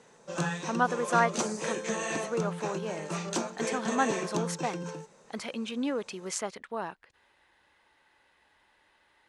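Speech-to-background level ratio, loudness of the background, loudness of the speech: 1.0 dB, -34.0 LUFS, -33.0 LUFS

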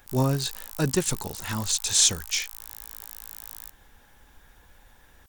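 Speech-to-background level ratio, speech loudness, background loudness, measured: 15.0 dB, -24.5 LUFS, -39.5 LUFS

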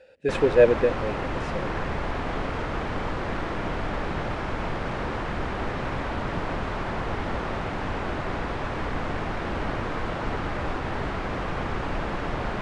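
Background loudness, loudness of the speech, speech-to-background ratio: -30.5 LUFS, -22.0 LUFS, 8.5 dB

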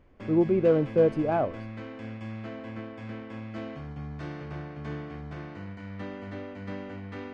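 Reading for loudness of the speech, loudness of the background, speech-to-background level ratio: -25.0 LUFS, -39.5 LUFS, 14.5 dB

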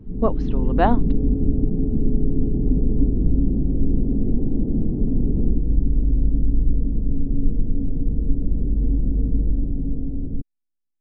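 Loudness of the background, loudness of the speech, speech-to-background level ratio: -23.5 LUFS, -24.5 LUFS, -1.0 dB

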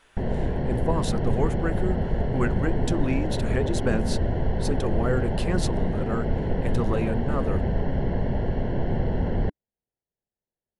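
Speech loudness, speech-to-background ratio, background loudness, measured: -30.5 LUFS, -3.0 dB, -27.5 LUFS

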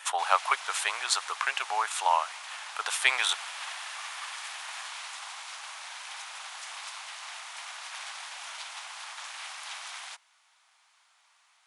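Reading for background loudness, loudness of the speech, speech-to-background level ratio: -39.5 LUFS, -28.0 LUFS, 11.5 dB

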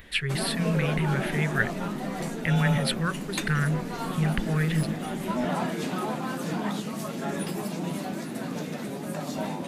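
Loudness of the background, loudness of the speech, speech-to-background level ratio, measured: -31.5 LUFS, -28.0 LUFS, 3.5 dB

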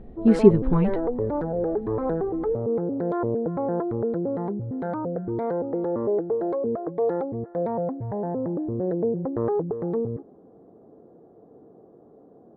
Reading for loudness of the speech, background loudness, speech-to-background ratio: -20.0 LUFS, -27.5 LUFS, 7.5 dB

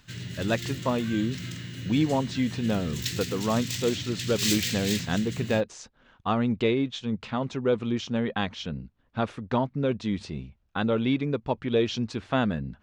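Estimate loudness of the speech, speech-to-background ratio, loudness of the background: -28.5 LUFS, 4.5 dB, -33.0 LUFS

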